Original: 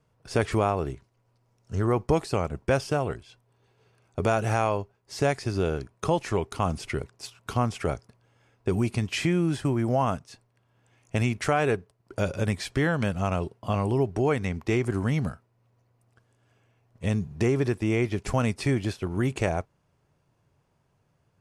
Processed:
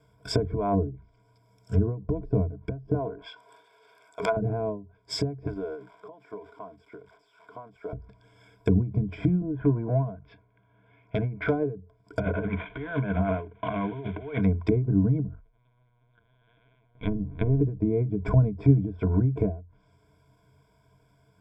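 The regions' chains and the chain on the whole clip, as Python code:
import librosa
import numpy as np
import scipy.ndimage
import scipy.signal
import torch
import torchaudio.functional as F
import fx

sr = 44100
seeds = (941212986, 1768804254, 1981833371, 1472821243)

y = fx.chain(x, sr, fx.highpass(hz=50.0, slope=6),
    fx.over_compress(threshold_db=-27.0, ratio=-0.5), at=(0.5, 0.9))
y = fx.chain(y, sr, fx.highpass(hz=490.0, slope=12),
    fx.peak_eq(hz=1100.0, db=4.5, octaves=1.6),
    fx.transient(attack_db=-11, sustain_db=9), at=(2.94, 4.37))
y = fx.chain(y, sr, fx.crossing_spikes(level_db=-23.5),
    fx.highpass(hz=970.0, slope=12),
    fx.env_flatten(amount_pct=100), at=(5.47, 7.93))
y = fx.chain(y, sr, fx.lowpass(hz=2700.0, slope=24),
    fx.tube_stage(drive_db=23.0, bias=0.5), at=(9.41, 11.66))
y = fx.chain(y, sr, fx.cvsd(bps=16000),
    fx.low_shelf(hz=120.0, db=-10.0),
    fx.over_compress(threshold_db=-33.0, ratio=-0.5), at=(12.2, 14.41))
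y = fx.chain(y, sr, fx.halfwave_gain(db=-12.0),
    fx.lpc_vocoder(seeds[0], excitation='pitch_kept', order=10), at=(15.27, 17.61))
y = fx.env_lowpass_down(y, sr, base_hz=320.0, full_db=-23.5)
y = fx.ripple_eq(y, sr, per_octave=1.7, db=18)
y = fx.end_taper(y, sr, db_per_s=130.0)
y = y * 10.0 ** (3.0 / 20.0)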